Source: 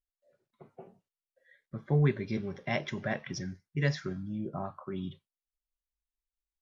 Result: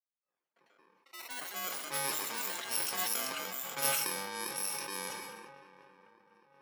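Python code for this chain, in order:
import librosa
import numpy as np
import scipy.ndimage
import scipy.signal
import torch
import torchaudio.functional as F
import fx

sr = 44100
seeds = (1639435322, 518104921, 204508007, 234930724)

p1 = fx.bit_reversed(x, sr, seeds[0], block=64)
p2 = scipy.signal.sosfilt(scipy.signal.butter(2, 640.0, 'highpass', fs=sr, output='sos'), p1)
p3 = fx.rider(p2, sr, range_db=10, speed_s=2.0)
p4 = p3 + fx.echo_swing(p3, sr, ms=981, ratio=3, feedback_pct=52, wet_db=-17, dry=0)
p5 = fx.env_lowpass(p4, sr, base_hz=1300.0, full_db=-30.5)
p6 = fx.rev_gated(p5, sr, seeds[1], gate_ms=400, shape='falling', drr_db=11.5)
p7 = fx.echo_pitch(p6, sr, ms=110, semitones=5, count=3, db_per_echo=-3.0)
y = fx.sustainer(p7, sr, db_per_s=30.0)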